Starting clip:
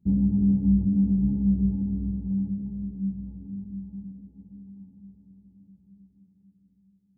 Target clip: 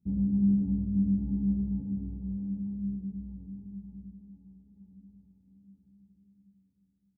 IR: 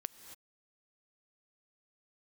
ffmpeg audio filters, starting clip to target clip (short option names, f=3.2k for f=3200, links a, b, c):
-filter_complex "[0:a]asplit=3[a][b][c];[a]afade=t=out:st=4.1:d=0.02[d];[b]acompressor=threshold=-46dB:ratio=6,afade=t=in:st=4.1:d=0.02,afade=t=out:st=4.7:d=0.02[e];[c]afade=t=in:st=4.7:d=0.02[f];[d][e][f]amix=inputs=3:normalize=0,aecho=1:1:100|260|516|925.6|1581:0.631|0.398|0.251|0.158|0.1[g];[1:a]atrim=start_sample=2205,afade=t=out:st=0.24:d=0.01,atrim=end_sample=11025[h];[g][h]afir=irnorm=-1:irlink=0,volume=-5.5dB"